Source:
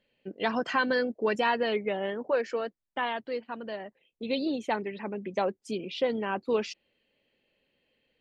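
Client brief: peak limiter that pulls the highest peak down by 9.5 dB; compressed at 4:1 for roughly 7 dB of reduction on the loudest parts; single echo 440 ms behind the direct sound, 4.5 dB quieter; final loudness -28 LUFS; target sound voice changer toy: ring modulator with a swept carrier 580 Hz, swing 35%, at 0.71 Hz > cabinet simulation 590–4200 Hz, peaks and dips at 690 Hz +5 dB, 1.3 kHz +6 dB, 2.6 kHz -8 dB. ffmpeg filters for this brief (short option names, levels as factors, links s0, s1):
-af "acompressor=threshold=0.0316:ratio=4,alimiter=level_in=1.68:limit=0.0631:level=0:latency=1,volume=0.596,aecho=1:1:440:0.596,aeval=exprs='val(0)*sin(2*PI*580*n/s+580*0.35/0.71*sin(2*PI*0.71*n/s))':c=same,highpass=590,equalizer=f=690:t=q:w=4:g=5,equalizer=f=1300:t=q:w=4:g=6,equalizer=f=2600:t=q:w=4:g=-8,lowpass=f=4200:w=0.5412,lowpass=f=4200:w=1.3066,volume=3.98"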